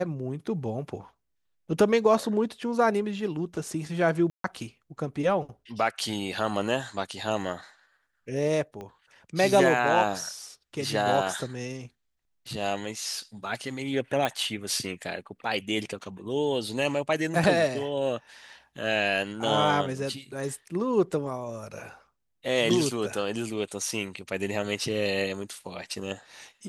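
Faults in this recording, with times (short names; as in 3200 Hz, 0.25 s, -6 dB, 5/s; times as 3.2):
4.3–4.44 gap 0.143 s
8.81 pop -27 dBFS
14.25 pop -14 dBFS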